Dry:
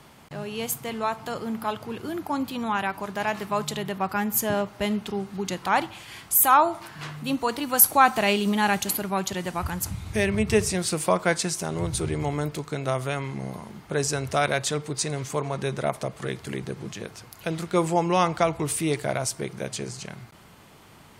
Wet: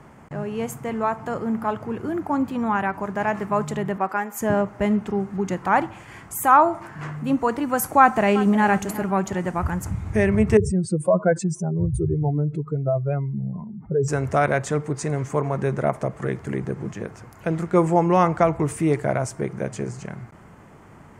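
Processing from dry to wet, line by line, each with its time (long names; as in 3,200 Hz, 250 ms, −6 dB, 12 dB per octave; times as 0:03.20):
0:03.96–0:04.40: high-pass filter 240 Hz → 660 Hz
0:07.99–0:08.67: delay throw 360 ms, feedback 40%, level −15.5 dB
0:10.57–0:14.08: expanding power law on the bin magnitudes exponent 2.6
whole clip: drawn EQ curve 220 Hz 0 dB, 1,900 Hz −4 dB, 3,900 Hz −21 dB, 7,100 Hz −10 dB, 12,000 Hz −19 dB; level +6 dB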